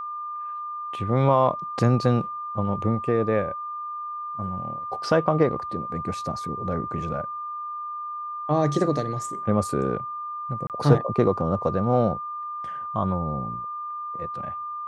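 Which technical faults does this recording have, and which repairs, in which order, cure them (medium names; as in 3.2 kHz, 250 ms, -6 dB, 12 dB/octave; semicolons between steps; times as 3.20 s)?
whine 1.2 kHz -30 dBFS
10.67–10.70 s: dropout 28 ms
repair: band-stop 1.2 kHz, Q 30; interpolate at 10.67 s, 28 ms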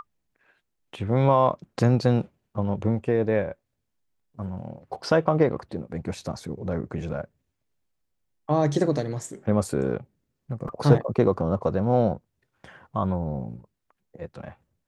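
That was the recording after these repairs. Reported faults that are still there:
nothing left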